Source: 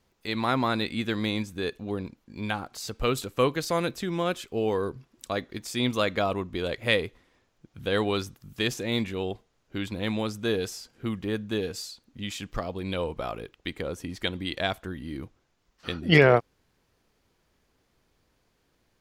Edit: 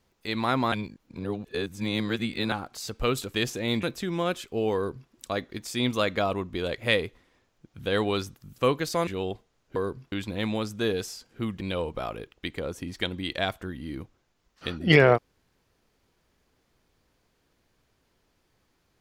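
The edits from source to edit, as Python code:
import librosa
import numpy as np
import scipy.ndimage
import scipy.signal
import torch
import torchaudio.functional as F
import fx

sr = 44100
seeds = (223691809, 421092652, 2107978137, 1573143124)

y = fx.edit(x, sr, fx.reverse_span(start_s=0.72, length_s=1.8),
    fx.swap(start_s=3.34, length_s=0.49, other_s=8.58, other_length_s=0.49),
    fx.duplicate(start_s=4.75, length_s=0.36, to_s=9.76),
    fx.cut(start_s=11.25, length_s=1.58), tone=tone)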